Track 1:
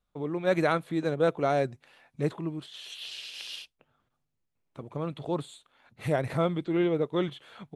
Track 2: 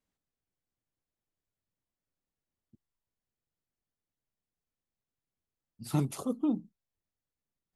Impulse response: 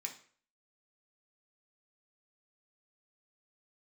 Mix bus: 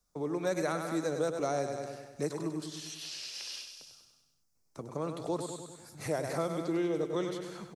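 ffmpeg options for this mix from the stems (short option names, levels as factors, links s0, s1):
-filter_complex "[0:a]volume=1.06,asplit=2[s0][s1];[s1]volume=0.376[s2];[1:a]acrossover=split=170[s3][s4];[s4]acompressor=threshold=0.00794:ratio=6[s5];[s3][s5]amix=inputs=2:normalize=0,volume=0.106[s6];[s2]aecho=0:1:98|196|294|392|490|588|686|784:1|0.55|0.303|0.166|0.0915|0.0503|0.0277|0.0152[s7];[s0][s6][s7]amix=inputs=3:normalize=0,highshelf=f=4200:t=q:w=3:g=9,acrossover=split=100|250|3500[s8][s9][s10][s11];[s8]acompressor=threshold=0.00112:ratio=4[s12];[s9]acompressor=threshold=0.00501:ratio=4[s13];[s10]acompressor=threshold=0.0316:ratio=4[s14];[s11]acompressor=threshold=0.00447:ratio=4[s15];[s12][s13][s14][s15]amix=inputs=4:normalize=0"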